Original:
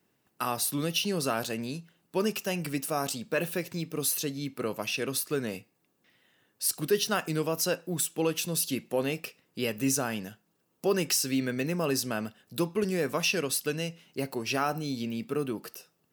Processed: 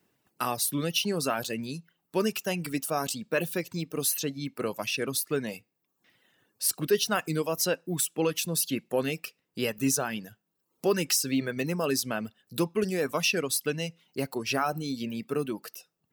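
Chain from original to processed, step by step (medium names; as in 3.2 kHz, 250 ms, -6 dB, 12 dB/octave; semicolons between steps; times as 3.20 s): reverb removal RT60 0.67 s; trim +1.5 dB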